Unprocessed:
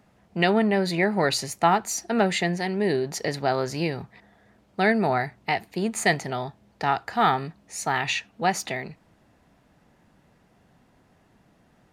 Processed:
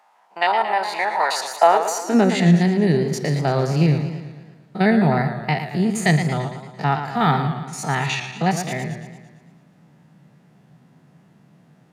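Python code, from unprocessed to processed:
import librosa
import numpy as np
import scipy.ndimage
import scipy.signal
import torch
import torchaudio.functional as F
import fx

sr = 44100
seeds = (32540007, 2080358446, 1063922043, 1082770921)

y = fx.spec_steps(x, sr, hold_ms=50)
y = fx.filter_sweep_highpass(y, sr, from_hz=890.0, to_hz=150.0, start_s=1.35, end_s=2.57, q=4.6)
y = fx.echo_warbled(y, sr, ms=113, feedback_pct=56, rate_hz=2.8, cents=108, wet_db=-9)
y = F.gain(torch.from_numpy(y), 2.5).numpy()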